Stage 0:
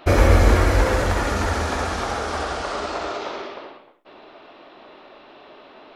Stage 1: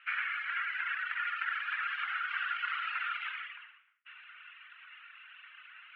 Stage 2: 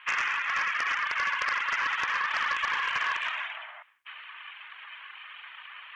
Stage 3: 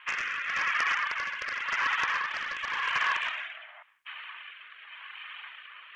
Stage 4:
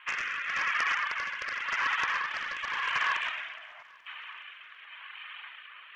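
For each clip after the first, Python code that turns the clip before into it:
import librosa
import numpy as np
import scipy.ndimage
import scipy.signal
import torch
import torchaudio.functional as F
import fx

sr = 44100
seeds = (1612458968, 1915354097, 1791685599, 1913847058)

y1 = scipy.signal.sosfilt(scipy.signal.ellip(3, 1.0, 60, [1400.0, 2900.0], 'bandpass', fs=sr, output='sos'), x)
y1 = fx.dereverb_blind(y1, sr, rt60_s=1.4)
y1 = fx.rider(y1, sr, range_db=5, speed_s=0.5)
y2 = y1 * np.sin(2.0 * np.pi * 290.0 * np.arange(len(y1)) / sr)
y2 = fx.fold_sine(y2, sr, drive_db=7, ceiling_db=-21.0)
y2 = fx.spec_paint(y2, sr, seeds[0], shape='noise', start_s=2.99, length_s=0.84, low_hz=600.0, high_hz=2200.0, level_db=-47.0)
y3 = fx.rotary(y2, sr, hz=0.9)
y3 = fx.rider(y3, sr, range_db=10, speed_s=2.0)
y3 = y3 * 10.0 ** (1.0 / 20.0)
y4 = fx.echo_feedback(y3, sr, ms=420, feedback_pct=59, wet_db=-22.0)
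y4 = y4 * 10.0 ** (-1.0 / 20.0)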